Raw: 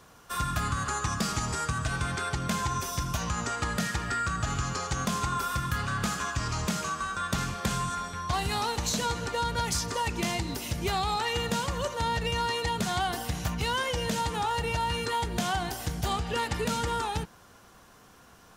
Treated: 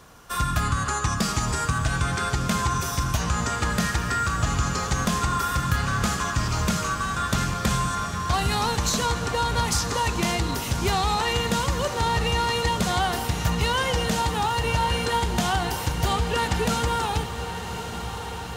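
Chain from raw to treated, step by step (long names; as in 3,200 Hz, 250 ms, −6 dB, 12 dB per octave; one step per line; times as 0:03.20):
low-shelf EQ 60 Hz +6.5 dB
feedback delay with all-pass diffusion 1,137 ms, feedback 74%, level −10.5 dB
level +4.5 dB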